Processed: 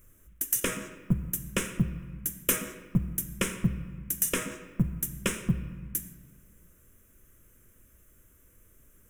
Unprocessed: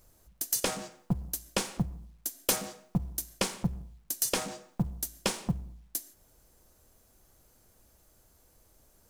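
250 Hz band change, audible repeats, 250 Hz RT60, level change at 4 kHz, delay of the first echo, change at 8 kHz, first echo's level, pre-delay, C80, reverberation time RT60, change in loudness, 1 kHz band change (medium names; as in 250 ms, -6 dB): +4.0 dB, no echo, 1.9 s, -3.5 dB, no echo, +1.0 dB, no echo, 3 ms, 12.5 dB, 1.6 s, +2.5 dB, -3.5 dB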